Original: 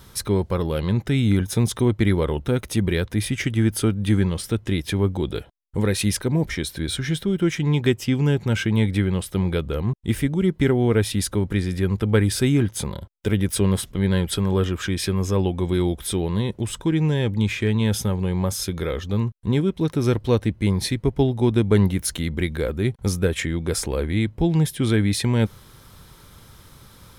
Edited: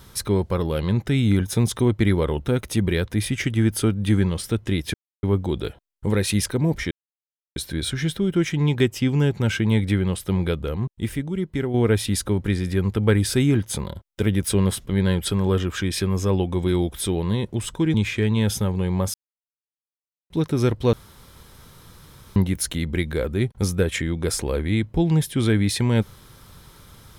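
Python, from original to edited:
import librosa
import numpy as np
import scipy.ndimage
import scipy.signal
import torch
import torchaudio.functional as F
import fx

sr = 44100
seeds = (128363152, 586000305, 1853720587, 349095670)

y = fx.edit(x, sr, fx.insert_silence(at_s=4.94, length_s=0.29),
    fx.insert_silence(at_s=6.62, length_s=0.65),
    fx.fade_out_to(start_s=9.56, length_s=1.24, curve='qua', floor_db=-6.5),
    fx.cut(start_s=17.0, length_s=0.38),
    fx.silence(start_s=18.58, length_s=1.16),
    fx.room_tone_fill(start_s=20.37, length_s=1.43), tone=tone)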